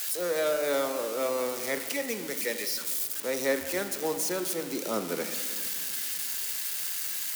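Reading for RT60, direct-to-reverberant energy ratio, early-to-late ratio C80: 2.1 s, 7.5 dB, 10.0 dB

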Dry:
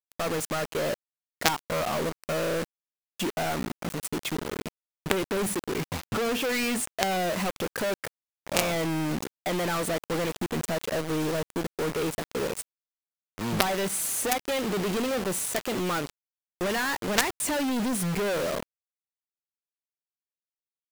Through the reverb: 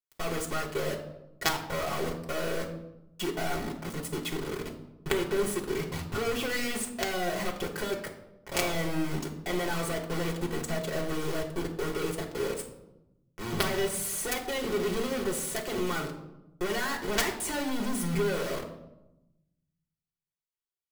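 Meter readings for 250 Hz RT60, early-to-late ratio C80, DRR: 1.4 s, 11.5 dB, -1.5 dB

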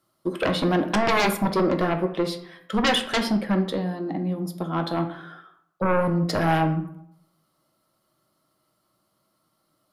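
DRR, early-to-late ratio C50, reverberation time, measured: 5.0 dB, 10.5 dB, 0.75 s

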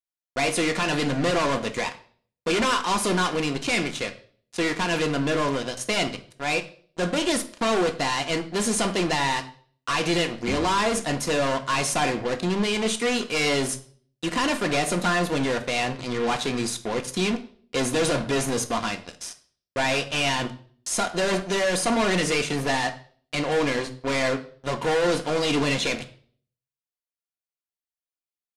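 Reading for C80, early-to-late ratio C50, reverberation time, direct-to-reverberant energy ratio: 18.5 dB, 13.5 dB, 0.50 s, 5.0 dB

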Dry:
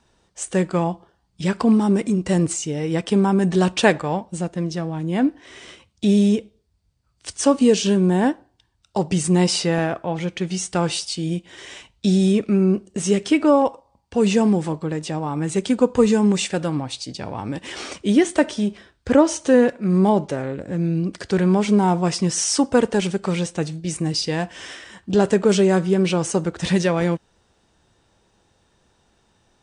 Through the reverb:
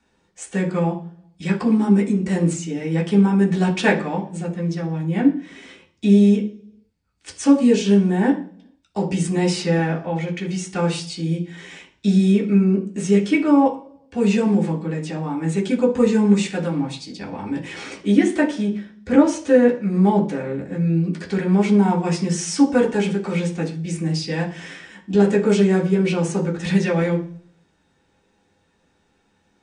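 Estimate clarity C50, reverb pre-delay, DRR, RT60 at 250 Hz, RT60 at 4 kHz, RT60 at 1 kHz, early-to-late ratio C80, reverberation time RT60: 12.0 dB, 3 ms, -4.5 dB, 0.75 s, 0.55 s, 0.40 s, 17.0 dB, 0.50 s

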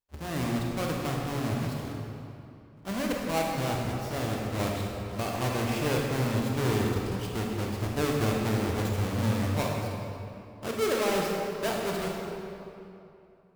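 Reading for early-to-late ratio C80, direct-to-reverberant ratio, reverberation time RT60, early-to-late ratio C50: 1.5 dB, -1.5 dB, 2.8 s, 0.0 dB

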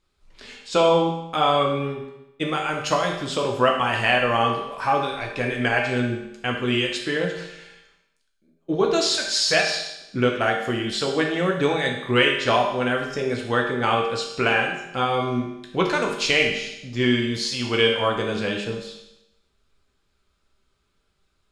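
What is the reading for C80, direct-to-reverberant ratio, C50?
6.5 dB, -0.5 dB, 4.0 dB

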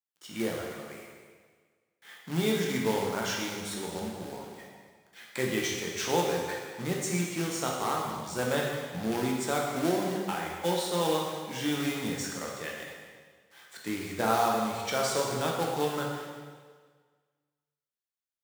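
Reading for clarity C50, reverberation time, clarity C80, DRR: 1.0 dB, 1.6 s, 3.0 dB, -2.0 dB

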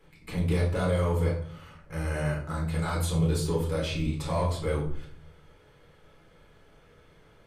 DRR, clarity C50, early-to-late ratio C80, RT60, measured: -4.5 dB, 5.5 dB, 10.5 dB, 0.60 s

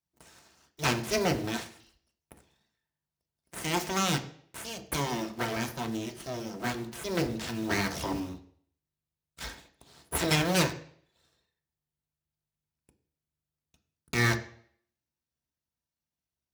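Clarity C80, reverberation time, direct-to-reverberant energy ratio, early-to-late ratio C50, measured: 17.0 dB, 0.60 s, 5.0 dB, 13.5 dB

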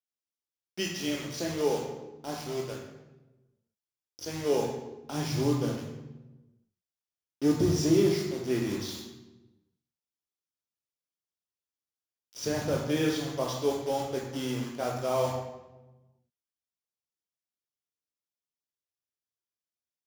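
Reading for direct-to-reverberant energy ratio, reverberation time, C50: -1.5 dB, 1.1 s, 3.0 dB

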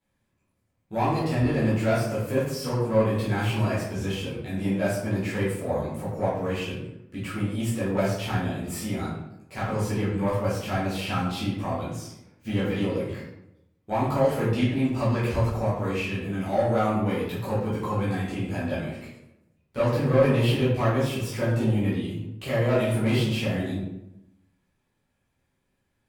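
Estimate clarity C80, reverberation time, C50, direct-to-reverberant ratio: 5.0 dB, 0.85 s, 1.5 dB, -10.5 dB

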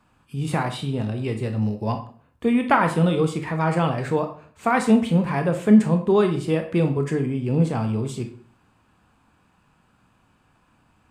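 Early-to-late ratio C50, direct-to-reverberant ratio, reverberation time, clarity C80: 10.0 dB, 5.5 dB, 0.45 s, 14.0 dB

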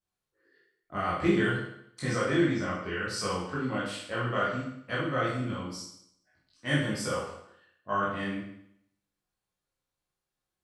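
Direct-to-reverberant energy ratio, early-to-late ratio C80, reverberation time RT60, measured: -8.5 dB, 5.5 dB, 0.70 s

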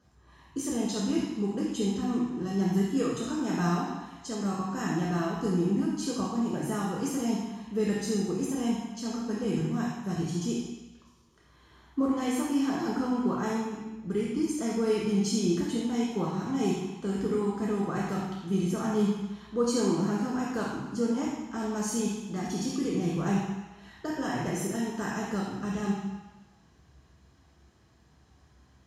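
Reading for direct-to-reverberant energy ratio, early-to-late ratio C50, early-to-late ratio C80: -4.5 dB, 0.0 dB, 2.5 dB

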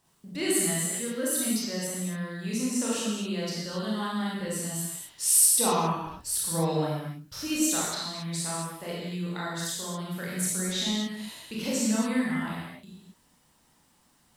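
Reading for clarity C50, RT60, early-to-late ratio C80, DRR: -1.5 dB, not exponential, 1.0 dB, -6.5 dB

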